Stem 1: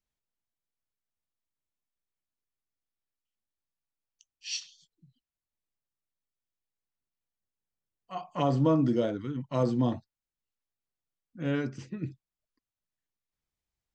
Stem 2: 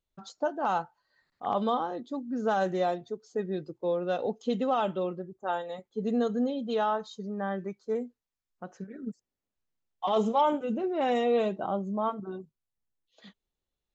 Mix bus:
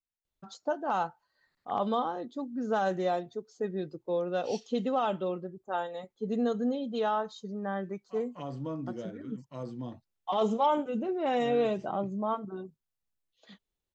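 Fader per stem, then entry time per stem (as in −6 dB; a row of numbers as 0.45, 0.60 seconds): −12.5, −1.5 decibels; 0.00, 0.25 seconds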